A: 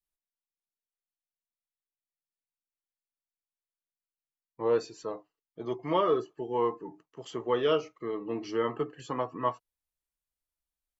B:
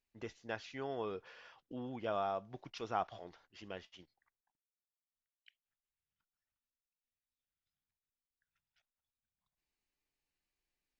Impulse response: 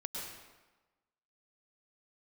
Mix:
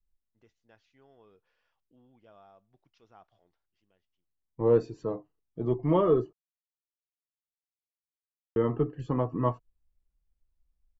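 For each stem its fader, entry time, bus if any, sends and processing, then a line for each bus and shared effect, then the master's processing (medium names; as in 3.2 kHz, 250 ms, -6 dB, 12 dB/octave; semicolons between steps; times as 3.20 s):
-2.0 dB, 0.00 s, muted 6.33–8.56 s, no send, tilt EQ -4 dB/octave
-18.0 dB, 0.20 s, no send, auto duck -18 dB, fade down 1.15 s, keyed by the first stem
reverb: none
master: bass shelf 260 Hz +5.5 dB; gain riding within 4 dB 2 s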